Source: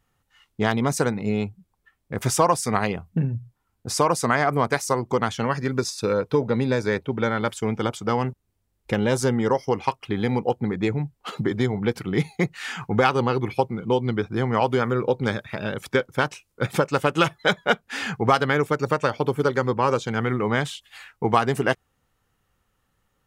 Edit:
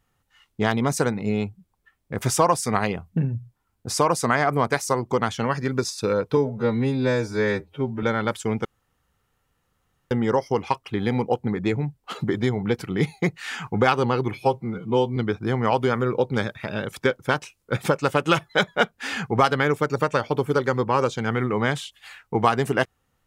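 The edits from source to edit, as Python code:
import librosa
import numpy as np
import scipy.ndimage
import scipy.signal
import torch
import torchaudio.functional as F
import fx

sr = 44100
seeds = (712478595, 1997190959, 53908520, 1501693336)

y = fx.edit(x, sr, fx.stretch_span(start_s=6.37, length_s=0.83, factor=2.0),
    fx.room_tone_fill(start_s=7.82, length_s=1.46),
    fx.stretch_span(start_s=13.51, length_s=0.55, factor=1.5), tone=tone)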